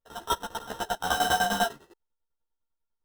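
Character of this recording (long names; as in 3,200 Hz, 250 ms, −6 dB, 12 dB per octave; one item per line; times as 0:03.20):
a buzz of ramps at a fixed pitch in blocks of 8 samples
tremolo saw down 10 Hz, depth 90%
aliases and images of a low sample rate 2,300 Hz, jitter 0%
a shimmering, thickened sound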